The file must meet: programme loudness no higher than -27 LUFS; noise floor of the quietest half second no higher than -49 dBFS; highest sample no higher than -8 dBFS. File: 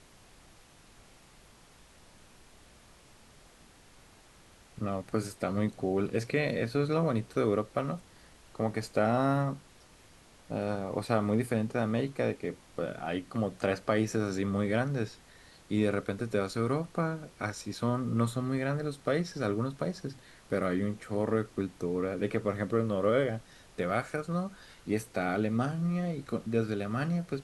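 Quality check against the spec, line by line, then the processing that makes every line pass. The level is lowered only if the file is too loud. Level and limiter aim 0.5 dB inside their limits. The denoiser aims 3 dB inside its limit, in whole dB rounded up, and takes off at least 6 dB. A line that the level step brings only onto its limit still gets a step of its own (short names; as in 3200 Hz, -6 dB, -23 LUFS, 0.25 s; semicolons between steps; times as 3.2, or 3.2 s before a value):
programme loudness -32.0 LUFS: OK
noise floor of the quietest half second -57 dBFS: OK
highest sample -13.5 dBFS: OK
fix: none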